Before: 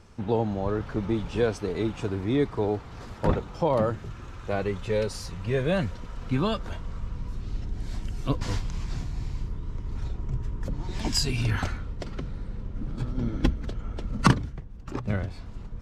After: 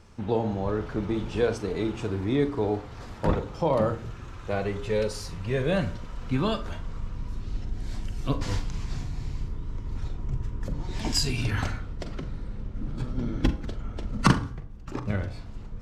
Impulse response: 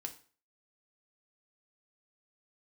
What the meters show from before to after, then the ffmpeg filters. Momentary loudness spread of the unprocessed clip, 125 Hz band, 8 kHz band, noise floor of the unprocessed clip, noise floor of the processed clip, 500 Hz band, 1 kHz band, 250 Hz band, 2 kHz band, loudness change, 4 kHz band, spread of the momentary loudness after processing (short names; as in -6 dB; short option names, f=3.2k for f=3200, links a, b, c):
12 LU, -0.5 dB, +0.5 dB, -42 dBFS, -41 dBFS, 0.0 dB, -0.5 dB, 0.0 dB, 0.0 dB, 0.0 dB, 0.0 dB, 12 LU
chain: -filter_complex "[0:a]bandreject=f=57.98:t=h:w=4,bandreject=f=115.96:t=h:w=4,bandreject=f=173.94:t=h:w=4,bandreject=f=231.92:t=h:w=4,bandreject=f=289.9:t=h:w=4,bandreject=f=347.88:t=h:w=4,bandreject=f=405.86:t=h:w=4,bandreject=f=463.84:t=h:w=4,bandreject=f=521.82:t=h:w=4,bandreject=f=579.8:t=h:w=4,bandreject=f=637.78:t=h:w=4,bandreject=f=695.76:t=h:w=4,bandreject=f=753.74:t=h:w=4,bandreject=f=811.72:t=h:w=4,bandreject=f=869.7:t=h:w=4,bandreject=f=927.68:t=h:w=4,bandreject=f=985.66:t=h:w=4,bandreject=f=1.04364k:t=h:w=4,bandreject=f=1.10162k:t=h:w=4,bandreject=f=1.1596k:t=h:w=4,bandreject=f=1.21758k:t=h:w=4,bandreject=f=1.27556k:t=h:w=4,bandreject=f=1.33354k:t=h:w=4,bandreject=f=1.39152k:t=h:w=4,bandreject=f=1.4495k:t=h:w=4,bandreject=f=1.50748k:t=h:w=4,bandreject=f=1.56546k:t=h:w=4,bandreject=f=1.62344k:t=h:w=4,asplit=2[a][b];[1:a]atrim=start_sample=2205,adelay=42[c];[b][c]afir=irnorm=-1:irlink=0,volume=-9dB[d];[a][d]amix=inputs=2:normalize=0"